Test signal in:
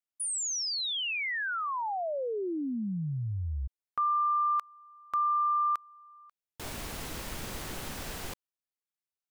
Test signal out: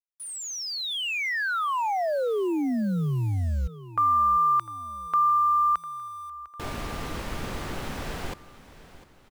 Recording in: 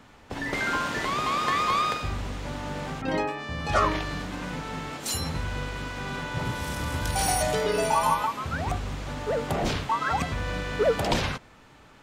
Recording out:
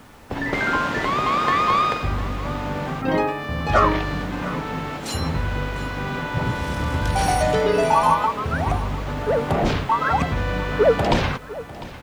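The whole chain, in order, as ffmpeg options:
-af "lowpass=f=2.3k:p=1,acrusher=bits=9:mix=0:aa=0.000001,aecho=1:1:701|1402|2103|2804:0.141|0.0664|0.0312|0.0147,volume=7dB"

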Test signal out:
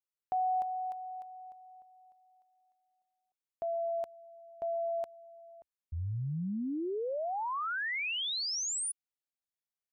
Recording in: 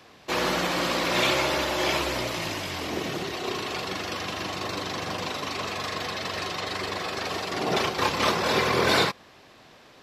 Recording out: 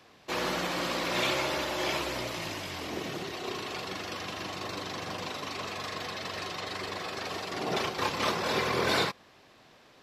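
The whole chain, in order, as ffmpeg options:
-af "equalizer=f=70:w=5.9:g=-4,volume=-5.5dB"

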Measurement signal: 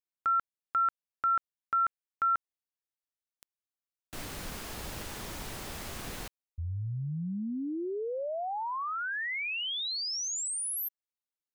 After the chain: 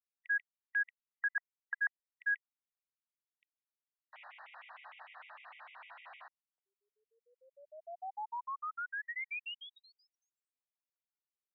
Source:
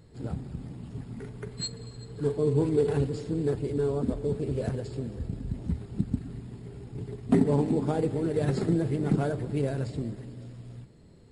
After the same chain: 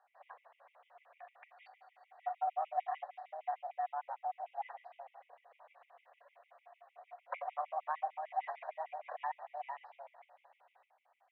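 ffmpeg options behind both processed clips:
-af "highpass=f=450:t=q:w=0.5412,highpass=f=450:t=q:w=1.307,lowpass=f=2.5k:t=q:w=0.5176,lowpass=f=2.5k:t=q:w=0.7071,lowpass=f=2.5k:t=q:w=1.932,afreqshift=300,afftfilt=real='re*gt(sin(2*PI*6.6*pts/sr)*(1-2*mod(floor(b*sr/1024/1900),2)),0)':imag='im*gt(sin(2*PI*6.6*pts/sr)*(1-2*mod(floor(b*sr/1024/1900),2)),0)':win_size=1024:overlap=0.75,volume=-4dB"

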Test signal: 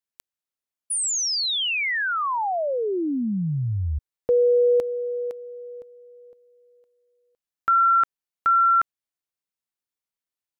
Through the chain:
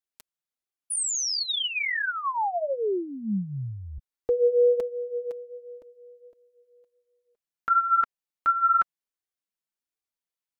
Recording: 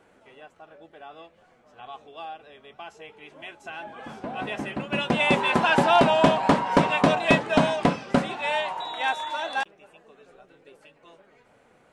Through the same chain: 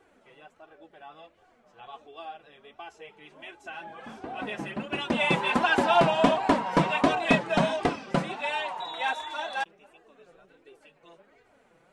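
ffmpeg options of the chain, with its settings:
-af "flanger=delay=2.5:depth=3.6:regen=6:speed=1.4:shape=sinusoidal"

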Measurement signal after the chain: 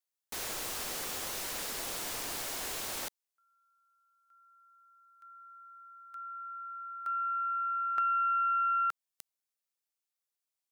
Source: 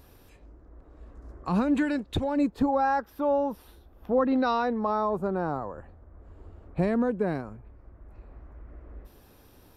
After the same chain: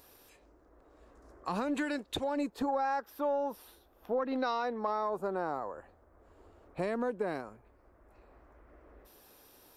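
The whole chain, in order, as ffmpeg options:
-af "aeval=exprs='0.211*(cos(1*acos(clip(val(0)/0.211,-1,1)))-cos(1*PI/2))+0.0168*(cos(2*acos(clip(val(0)/0.211,-1,1)))-cos(2*PI/2))':c=same,bass=f=250:g=-14,treble=f=4k:g=5,acompressor=threshold=-26dB:ratio=6,volume=-2dB"

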